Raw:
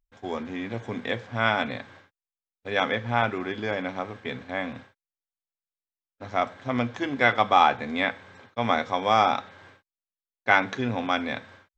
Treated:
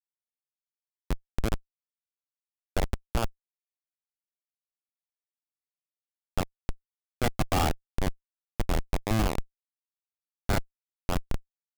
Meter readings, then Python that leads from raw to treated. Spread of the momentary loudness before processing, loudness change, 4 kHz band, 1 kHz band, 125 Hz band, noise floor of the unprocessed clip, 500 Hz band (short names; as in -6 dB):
14 LU, -6.5 dB, -8.0 dB, -12.5 dB, +2.5 dB, under -85 dBFS, -8.5 dB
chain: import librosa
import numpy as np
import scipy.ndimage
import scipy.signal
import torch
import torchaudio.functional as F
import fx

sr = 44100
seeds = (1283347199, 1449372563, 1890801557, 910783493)

y = fx.echo_split(x, sr, split_hz=1700.0, low_ms=200, high_ms=84, feedback_pct=52, wet_db=-14.5)
y = fx.schmitt(y, sr, flips_db=-15.5)
y = y * librosa.db_to_amplitude(4.5)